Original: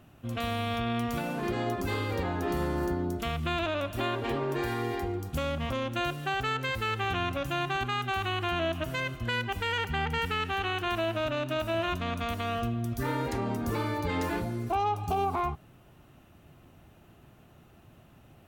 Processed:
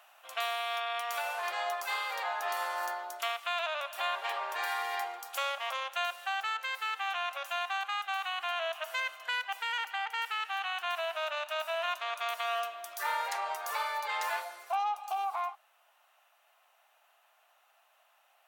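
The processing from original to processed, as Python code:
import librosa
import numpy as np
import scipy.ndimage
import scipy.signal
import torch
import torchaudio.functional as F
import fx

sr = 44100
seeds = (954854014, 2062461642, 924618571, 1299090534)

y = scipy.signal.sosfilt(scipy.signal.butter(6, 680.0, 'highpass', fs=sr, output='sos'), x)
y = fx.rider(y, sr, range_db=5, speed_s=0.5)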